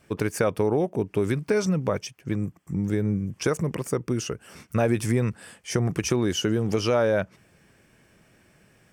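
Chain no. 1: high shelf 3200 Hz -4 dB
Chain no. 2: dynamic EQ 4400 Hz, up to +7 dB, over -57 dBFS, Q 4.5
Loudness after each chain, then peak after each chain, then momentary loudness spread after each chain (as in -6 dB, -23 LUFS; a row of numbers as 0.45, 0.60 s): -26.0, -26.0 LUFS; -10.0, -10.0 dBFS; 8, 8 LU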